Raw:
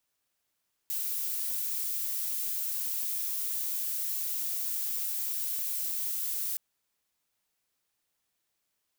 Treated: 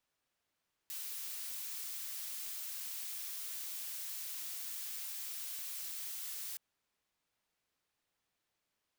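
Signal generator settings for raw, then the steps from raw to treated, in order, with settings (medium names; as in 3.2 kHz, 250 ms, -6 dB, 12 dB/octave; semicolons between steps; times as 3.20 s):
noise violet, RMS -32.5 dBFS 5.67 s
treble shelf 6.1 kHz -11.5 dB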